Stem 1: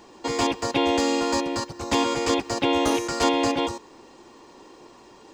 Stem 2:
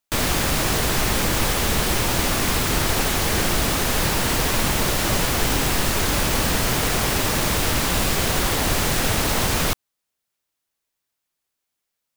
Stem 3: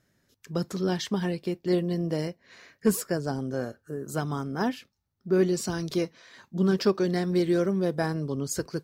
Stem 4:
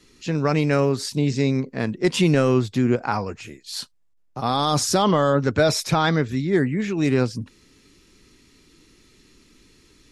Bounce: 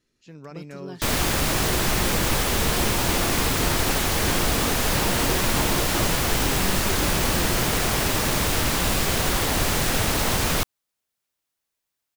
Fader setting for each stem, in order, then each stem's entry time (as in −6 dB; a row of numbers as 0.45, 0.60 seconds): −11.0, −1.5, −11.5, −20.0 decibels; 2.35, 0.90, 0.00, 0.00 seconds